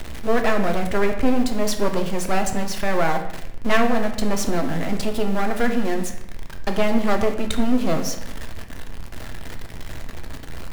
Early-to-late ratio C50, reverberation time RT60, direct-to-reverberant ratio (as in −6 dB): 8.5 dB, 0.90 s, 4.5 dB